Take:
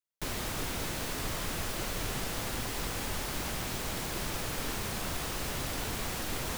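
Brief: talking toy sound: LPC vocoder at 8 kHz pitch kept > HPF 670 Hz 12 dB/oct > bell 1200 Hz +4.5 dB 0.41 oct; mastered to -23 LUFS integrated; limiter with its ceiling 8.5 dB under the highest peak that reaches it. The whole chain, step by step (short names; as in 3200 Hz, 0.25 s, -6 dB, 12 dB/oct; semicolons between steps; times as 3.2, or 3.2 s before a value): limiter -30 dBFS; LPC vocoder at 8 kHz pitch kept; HPF 670 Hz 12 dB/oct; bell 1200 Hz +4.5 dB 0.41 oct; gain +20 dB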